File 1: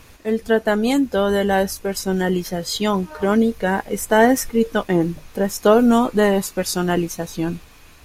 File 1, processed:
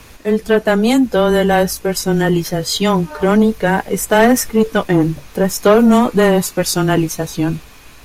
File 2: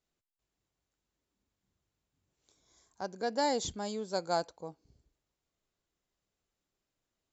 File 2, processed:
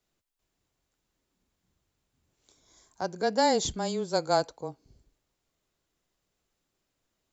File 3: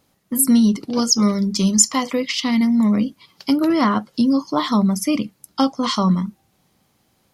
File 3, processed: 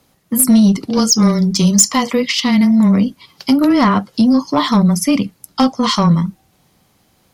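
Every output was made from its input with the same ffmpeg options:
ffmpeg -i in.wav -af "afreqshift=-13,acontrast=90,volume=-1dB" out.wav

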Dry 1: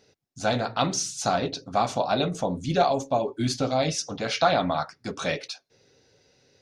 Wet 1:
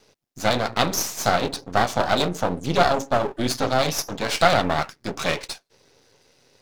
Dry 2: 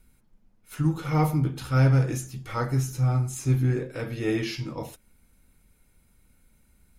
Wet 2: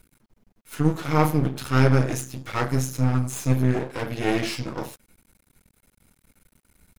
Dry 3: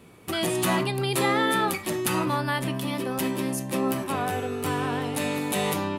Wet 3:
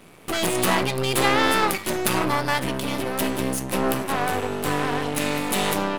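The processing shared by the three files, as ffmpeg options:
ffmpeg -i in.wav -af "aeval=exprs='max(val(0),0)':channel_layout=same,lowshelf=frequency=82:gain=-8,volume=8dB" out.wav

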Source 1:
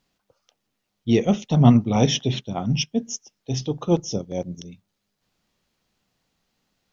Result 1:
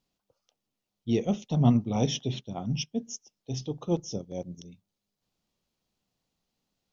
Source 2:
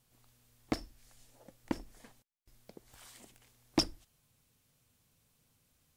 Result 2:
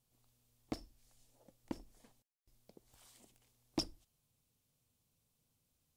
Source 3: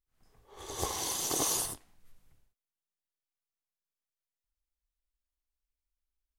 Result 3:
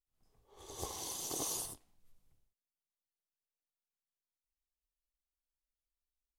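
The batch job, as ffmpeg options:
ffmpeg -i in.wav -af "equalizer=frequency=1700:width_type=o:width=1.1:gain=-6.5,volume=-7.5dB" out.wav

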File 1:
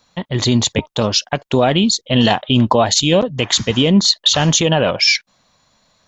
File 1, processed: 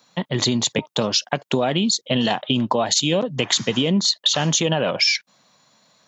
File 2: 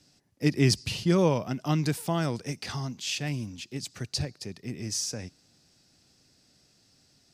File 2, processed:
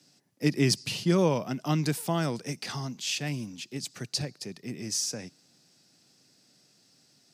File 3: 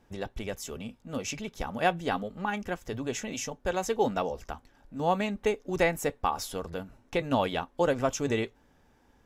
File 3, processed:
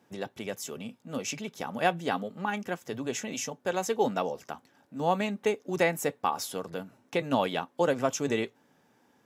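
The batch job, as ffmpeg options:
ffmpeg -i in.wav -af "acompressor=threshold=-16dB:ratio=6,highpass=frequency=130:width=0.5412,highpass=frequency=130:width=1.3066,highshelf=frequency=8000:gain=3.5" out.wav

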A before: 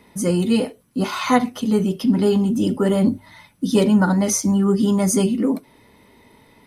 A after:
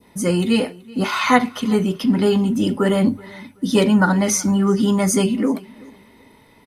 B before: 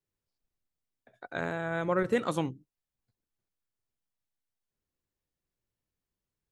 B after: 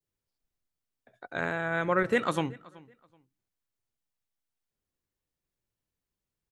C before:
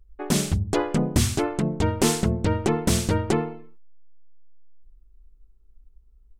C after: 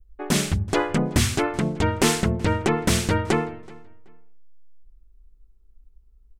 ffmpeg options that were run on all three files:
ffmpeg -i in.wav -filter_complex "[0:a]adynamicequalizer=threshold=0.01:dfrequency=1900:dqfactor=0.74:tfrequency=1900:tqfactor=0.74:attack=5:release=100:ratio=0.375:range=3.5:mode=boostabove:tftype=bell,asplit=2[link_01][link_02];[link_02]adelay=378,lowpass=frequency=4800:poles=1,volume=-22.5dB,asplit=2[link_03][link_04];[link_04]adelay=378,lowpass=frequency=4800:poles=1,volume=0.25[link_05];[link_01][link_03][link_05]amix=inputs=3:normalize=0" out.wav

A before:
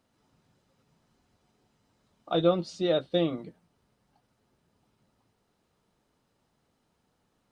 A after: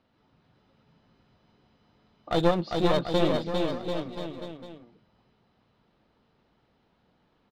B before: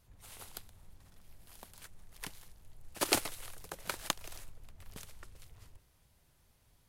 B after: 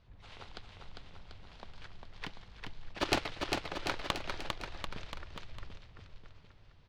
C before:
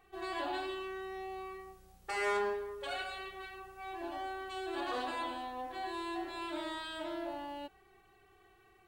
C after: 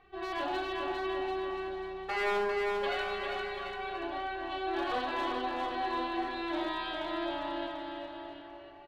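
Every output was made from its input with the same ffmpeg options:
ffmpeg -i in.wav -af "lowpass=frequency=4300:width=0.5412,lowpass=frequency=4300:width=1.3066,aeval=exprs='clip(val(0),-1,0.0211)':channel_layout=same,aecho=1:1:400|740|1029|1275|1483:0.631|0.398|0.251|0.158|0.1,volume=3.5dB" out.wav

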